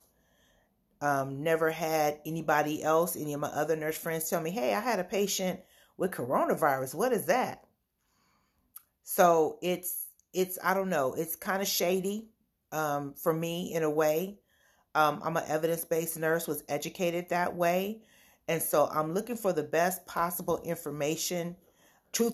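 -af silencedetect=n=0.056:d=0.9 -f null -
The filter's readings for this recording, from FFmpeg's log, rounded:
silence_start: 0.00
silence_end: 1.03 | silence_duration: 1.03
silence_start: 7.46
silence_end: 9.12 | silence_duration: 1.66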